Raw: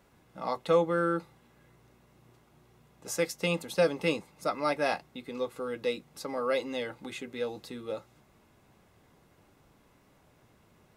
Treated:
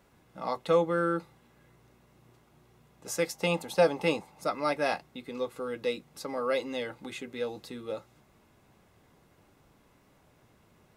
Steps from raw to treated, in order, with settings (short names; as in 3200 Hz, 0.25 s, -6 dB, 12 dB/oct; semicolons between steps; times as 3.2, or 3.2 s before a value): 3.27–4.44 bell 800 Hz +9.5 dB 0.59 oct